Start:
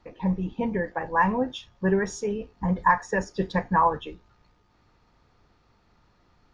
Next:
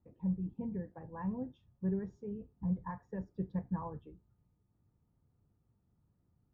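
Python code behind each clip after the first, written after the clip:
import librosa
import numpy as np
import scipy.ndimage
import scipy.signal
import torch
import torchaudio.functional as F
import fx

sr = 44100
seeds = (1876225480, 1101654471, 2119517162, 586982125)

y = fx.bandpass_q(x, sr, hz=120.0, q=1.2)
y = y * librosa.db_to_amplitude(-5.0)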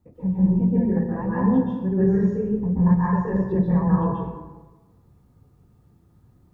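y = fx.rev_plate(x, sr, seeds[0], rt60_s=1.2, hf_ratio=0.55, predelay_ms=115, drr_db=-8.5)
y = y * librosa.db_to_amplitude(9.0)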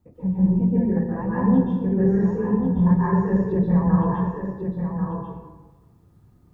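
y = x + 10.0 ** (-6.5 / 20.0) * np.pad(x, (int(1089 * sr / 1000.0), 0))[:len(x)]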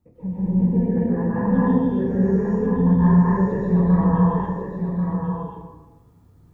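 y = fx.rev_gated(x, sr, seeds[1], gate_ms=300, shape='rising', drr_db=-4.0)
y = y * librosa.db_to_amplitude(-3.5)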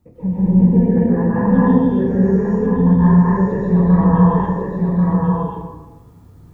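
y = fx.rider(x, sr, range_db=4, speed_s=2.0)
y = y * librosa.db_to_amplitude(5.0)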